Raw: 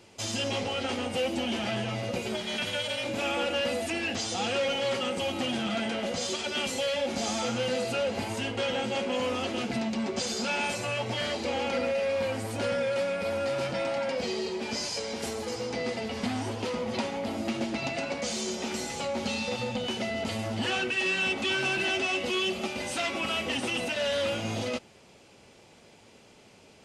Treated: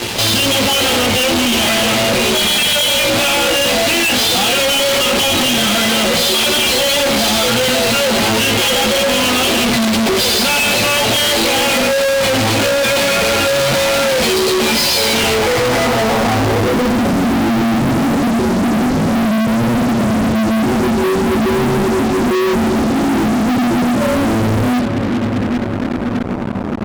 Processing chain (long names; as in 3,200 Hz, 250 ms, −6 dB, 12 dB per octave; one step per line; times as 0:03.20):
low-pass filter sweep 3,900 Hz → 250 Hz, 0:15.06–0:17.07
multi-voice chorus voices 2, 0.14 Hz, delay 17 ms, depth 4.1 ms
brickwall limiter −26 dBFS, peak gain reduction 8.5 dB
on a send: echo machine with several playback heads 395 ms, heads first and second, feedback 65%, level −22.5 dB
on the sum: fuzz pedal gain 60 dB, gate −57 dBFS